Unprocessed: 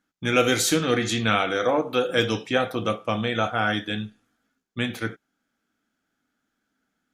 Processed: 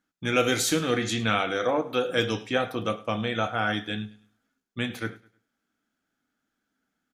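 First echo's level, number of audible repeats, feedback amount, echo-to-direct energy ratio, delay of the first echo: -20.5 dB, 2, 34%, -20.0 dB, 104 ms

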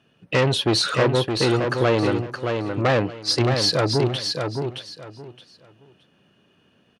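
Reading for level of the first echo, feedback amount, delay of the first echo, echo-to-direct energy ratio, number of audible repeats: -5.5 dB, 22%, 619 ms, -5.5 dB, 3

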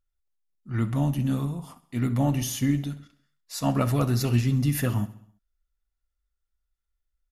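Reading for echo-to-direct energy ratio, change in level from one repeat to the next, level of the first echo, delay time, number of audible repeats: -16.5 dB, -5.0 dB, -18.0 dB, 66 ms, 4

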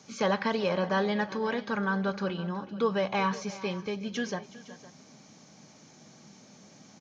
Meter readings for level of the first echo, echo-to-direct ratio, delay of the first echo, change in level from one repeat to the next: -17.5 dB, -15.0 dB, 371 ms, no regular repeats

